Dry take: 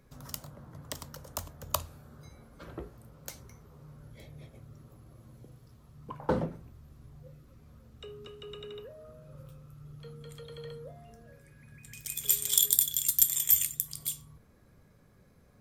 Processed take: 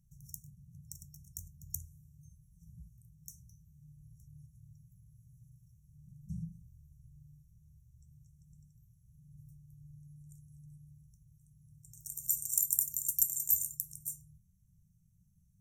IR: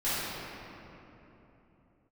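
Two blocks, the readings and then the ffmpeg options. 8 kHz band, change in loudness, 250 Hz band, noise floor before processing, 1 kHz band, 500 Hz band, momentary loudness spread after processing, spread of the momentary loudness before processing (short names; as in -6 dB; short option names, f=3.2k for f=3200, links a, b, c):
-5.5 dB, -5.0 dB, -10.0 dB, -61 dBFS, under -40 dB, under -40 dB, 22 LU, 23 LU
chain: -af "afftfilt=real='re*(1-between(b*sr/4096,200,5500))':imag='im*(1-between(b*sr/4096,200,5500))':win_size=4096:overlap=0.75,volume=-5.5dB"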